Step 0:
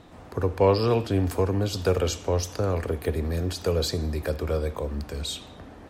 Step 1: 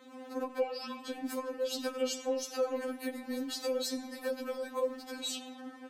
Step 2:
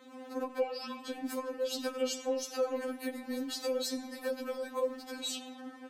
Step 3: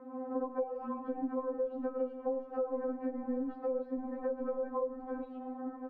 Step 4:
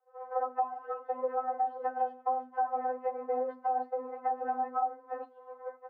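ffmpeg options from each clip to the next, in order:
ffmpeg -i in.wav -af "highpass=96,acompressor=threshold=-27dB:ratio=4,afftfilt=real='re*3.46*eq(mod(b,12),0)':imag='im*3.46*eq(mod(b,12),0)':win_size=2048:overlap=0.75" out.wav
ffmpeg -i in.wav -af anull out.wav
ffmpeg -i in.wav -af "asubboost=boost=3.5:cutoff=66,acompressor=threshold=-38dB:ratio=6,lowpass=frequency=1100:width=0.5412,lowpass=frequency=1100:width=1.3066,volume=7dB" out.wav
ffmpeg -i in.wav -af "agate=range=-33dB:threshold=-33dB:ratio=3:detection=peak,afreqshift=250,volume=4dB" out.wav

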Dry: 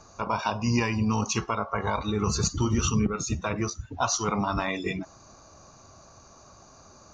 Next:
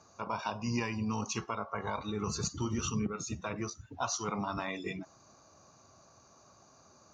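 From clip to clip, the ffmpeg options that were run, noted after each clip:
ffmpeg -i in.wav -af "highpass=98,volume=-8dB" out.wav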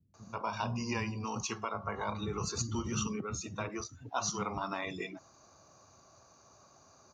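ffmpeg -i in.wav -filter_complex "[0:a]acrossover=split=220[link_01][link_02];[link_02]adelay=140[link_03];[link_01][link_03]amix=inputs=2:normalize=0" out.wav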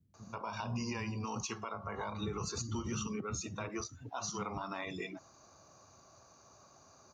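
ffmpeg -i in.wav -af "alimiter=level_in=4.5dB:limit=-24dB:level=0:latency=1:release=112,volume=-4.5dB" out.wav

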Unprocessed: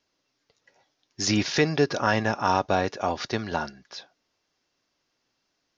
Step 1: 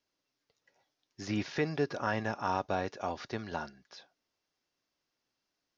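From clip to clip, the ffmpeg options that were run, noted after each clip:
ffmpeg -i in.wav -filter_complex "[0:a]acrossover=split=2700[link_01][link_02];[link_02]acompressor=threshold=-38dB:ratio=4:attack=1:release=60[link_03];[link_01][link_03]amix=inputs=2:normalize=0,volume=-9dB" out.wav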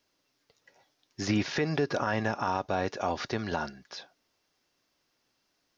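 ffmpeg -i in.wav -af "alimiter=level_in=2dB:limit=-24dB:level=0:latency=1:release=134,volume=-2dB,volume=9dB" out.wav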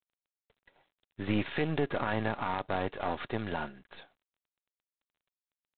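ffmpeg -i in.wav -af "aeval=exprs='if(lt(val(0),0),0.447*val(0),val(0))':channel_layout=same" -ar 8000 -c:a adpcm_g726 -b:a 24k out.wav

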